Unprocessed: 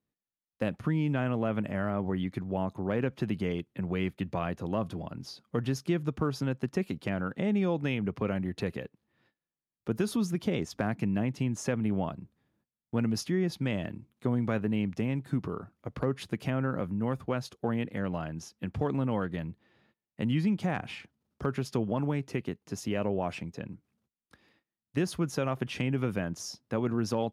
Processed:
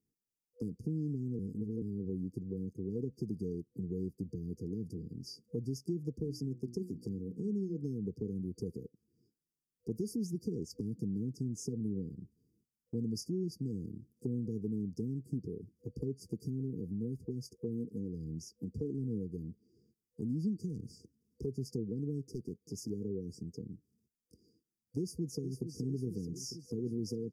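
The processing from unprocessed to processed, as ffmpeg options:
-filter_complex "[0:a]asettb=1/sr,asplit=3[a][b][c];[a]atrim=end=6.194[d];[b]atrim=start=6.19:end=7.82,asetpts=PTS-STARTPTS,afade=t=in:d=0.004:c=qsin,afade=t=out:st=1.626:d=0.004:c=qsin,bandreject=f=60:t=h:w=6,bandreject=f=120:t=h:w=6,bandreject=f=180:t=h:w=6,bandreject=f=240:t=h:w=6,bandreject=f=300:t=h:w=6,bandreject=f=360:t=h:w=6[e];[c]atrim=start=7.816[f];[d][e]acrossfade=d=0.004:c1=hsin:c2=qsin[g];[g][f]acrossfade=d=0.004:c1=qsin:c2=hsin,asplit=3[h][i][j];[h]afade=t=out:st=17.68:d=0.02[k];[i]aphaser=in_gain=1:out_gain=1:delay=5:decay=0.29:speed=1.2:type=triangular,afade=t=in:st=17.68:d=0.02,afade=t=out:st=21.76:d=0.02[l];[j]afade=t=in:st=21.76:d=0.02[m];[k][l][m]amix=inputs=3:normalize=0,asettb=1/sr,asplit=3[n][o][p];[n]atrim=end=22.264[q];[o]atrim=start=22.26:end=22.9,asetpts=PTS-STARTPTS,afade=t=in:d=0.004:c=qsin,afade=t=out:st=0.636:d=0.004:c=qsin,asoftclip=type=hard:threshold=-29dB[r];[p]atrim=start=22.896[s];[q][r]acrossfade=d=0.004:c1=hsin:c2=qsin[t];[t][s]acrossfade=d=0.004:c1=qsin:c2=hsin,asplit=2[u][v];[v]afade=t=in:st=24.98:d=0.01,afade=t=out:st=25.76:d=0.01,aecho=0:1:450|900|1350|1800|2250|2700|3150|3600|4050:0.316228|0.205548|0.133606|0.0868441|0.0564486|0.0366916|0.0238495|0.0155022|0.0100764[w];[u][w]amix=inputs=2:normalize=0,asplit=3[x][y][z];[x]atrim=end=1.392[aa];[y]atrim=start=1.388:end=1.822,asetpts=PTS-STARTPTS,areverse[ab];[z]atrim=start=1.818[ac];[aa][ab]acrossfade=d=0.004:c1=hsin:c2=hsin[ad];[ad][ac]acrossfade=d=0.004:c1=hsin:c2=hsin,afftfilt=real='re*(1-between(b*sr/4096,490,4600))':imag='im*(1-between(b*sr/4096,490,4600))':win_size=4096:overlap=0.75,acompressor=threshold=-48dB:ratio=1.5,volume=1dB"

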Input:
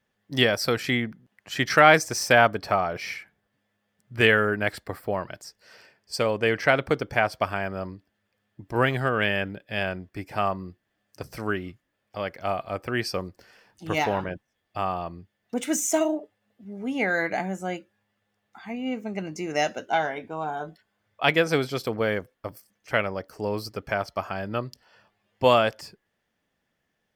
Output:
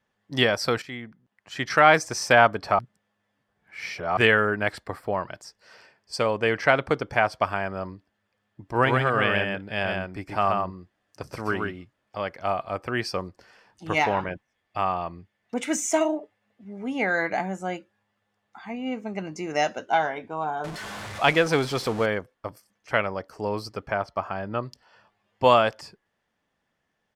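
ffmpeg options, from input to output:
-filter_complex "[0:a]asplit=3[a][b][c];[a]afade=t=out:st=8.77:d=0.02[d];[b]aecho=1:1:129:0.668,afade=t=in:st=8.77:d=0.02,afade=t=out:st=12.26:d=0.02[e];[c]afade=t=in:st=12.26:d=0.02[f];[d][e][f]amix=inputs=3:normalize=0,asettb=1/sr,asplit=3[g][h][i];[g]atrim=end=13.954[j];[h]atrim=start=13.95:end=16.87,asetpts=PTS-STARTPTS,afade=t=in:d=0.004:c=qsin,afade=t=out:st=2.916:d=0.004:c=qsin,equalizer=f=2.2k:t=o:w=0.55:g=5.5[k];[i]atrim=start=16.866[l];[j][k]acrossfade=d=0.004:c1=hsin:c2=qsin[m];[m][l]acrossfade=d=0.004:c1=qsin:c2=hsin,asettb=1/sr,asplit=3[n][o][p];[n]atrim=end=20.644[q];[o]atrim=start=20.64:end=22.06,asetpts=PTS-STARTPTS,afade=t=in:d=0.004:c=qsin,afade=t=out:st=1.416:d=0.004:c=qsin,aeval=exprs='val(0)+0.5*0.0299*sgn(val(0))':c=same[r];[p]atrim=start=22.056[s];[q][r]acrossfade=d=0.004:c1=hsin:c2=qsin[t];[t][s]acrossfade=d=0.004:c1=qsin:c2=hsin,asettb=1/sr,asplit=3[u][v][w];[u]atrim=end=23.864[x];[v]atrim=start=23.86:end=24.63,asetpts=PTS-STARTPTS,afade=t=in:d=0.004:c=qsin,afade=t=out:st=0.766:d=0.004:c=qsin,highshelf=f=3.1k:g=-8.5[y];[w]atrim=start=24.626[z];[x][y]acrossfade=d=0.004:c1=hsin:c2=qsin[aa];[aa][z]acrossfade=d=0.004:c1=qsin:c2=hsin,asplit=4[ab][ac][ad][ae];[ab]atrim=end=0.82,asetpts=PTS-STARTPTS,afade=t=out:st=0.816:d=0.004:c=hsin:silence=0.199526[af];[ac]atrim=start=0.82:end=2.792,asetpts=PTS-STARTPTS,afade=t=in:d=1.41:silence=0.199526[ag];[ad]atrim=start=2.788:end=4.172,asetpts=PTS-STARTPTS,areverse[ah];[ae]atrim=start=4.168[ai];[af][ag]concat=n=2:v=0:a=1[aj];[aj][ah]acrossfade=d=0.004:c1=hsin:c2=hsin[ak];[ak][ai]acrossfade=d=0.004:c1=hsin:c2=hsin,lowpass=9.6k,equalizer=f=1k:t=o:w=0.95:g=5,volume=-1dB"

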